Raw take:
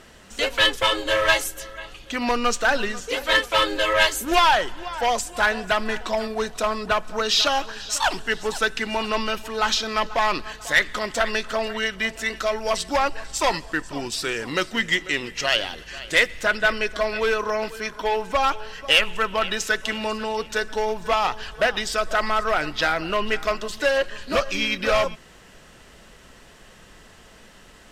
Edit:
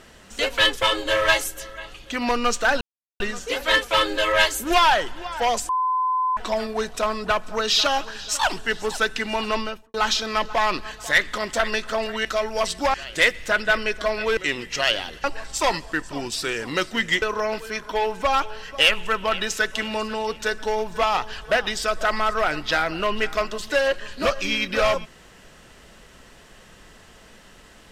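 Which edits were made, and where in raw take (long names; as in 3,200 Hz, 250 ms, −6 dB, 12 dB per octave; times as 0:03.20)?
0:02.81: splice in silence 0.39 s
0:05.30–0:05.98: beep over 1,020 Hz −19 dBFS
0:09.15–0:09.55: fade out and dull
0:11.86–0:12.35: remove
0:13.04–0:15.02: swap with 0:15.89–0:17.32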